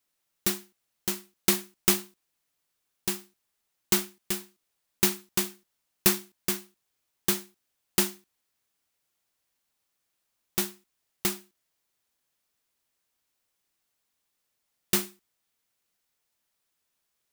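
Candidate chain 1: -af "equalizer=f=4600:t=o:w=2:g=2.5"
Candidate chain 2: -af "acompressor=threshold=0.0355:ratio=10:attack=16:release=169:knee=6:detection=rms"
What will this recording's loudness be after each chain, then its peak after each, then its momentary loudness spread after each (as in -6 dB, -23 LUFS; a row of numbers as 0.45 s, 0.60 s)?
-27.5 LUFS, -37.5 LUFS; -5.0 dBFS, -10.0 dBFS; 10 LU, 8 LU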